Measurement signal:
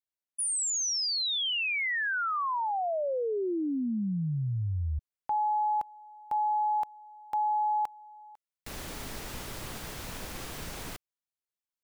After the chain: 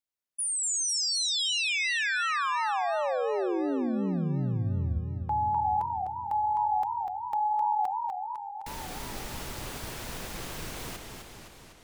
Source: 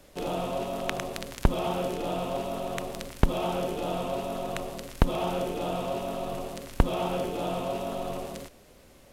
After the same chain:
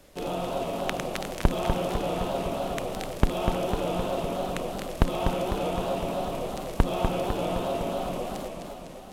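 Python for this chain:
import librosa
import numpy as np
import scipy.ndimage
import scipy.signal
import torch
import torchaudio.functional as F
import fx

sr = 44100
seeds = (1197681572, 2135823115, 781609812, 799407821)

y = fx.echo_warbled(x, sr, ms=253, feedback_pct=65, rate_hz=2.8, cents=204, wet_db=-5.5)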